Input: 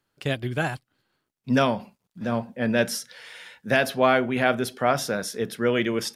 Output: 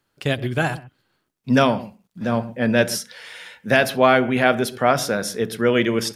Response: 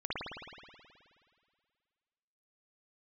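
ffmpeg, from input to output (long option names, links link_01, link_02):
-filter_complex "[0:a]asplit=2[link_01][link_02];[link_02]lowshelf=frequency=480:gain=12[link_03];[1:a]atrim=start_sample=2205,atrim=end_sample=3087,adelay=69[link_04];[link_03][link_04]afir=irnorm=-1:irlink=0,volume=-23.5dB[link_05];[link_01][link_05]amix=inputs=2:normalize=0,volume=4.5dB"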